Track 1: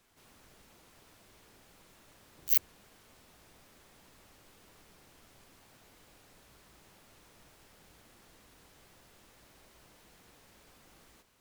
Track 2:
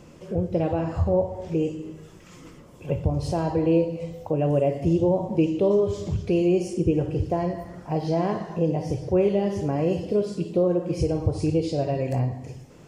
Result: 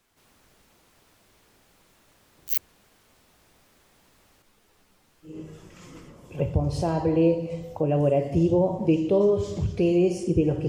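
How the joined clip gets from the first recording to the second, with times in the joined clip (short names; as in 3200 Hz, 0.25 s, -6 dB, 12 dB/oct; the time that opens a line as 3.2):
track 1
4.42–5.4 ensemble effect
5.31 switch to track 2 from 1.81 s, crossfade 0.18 s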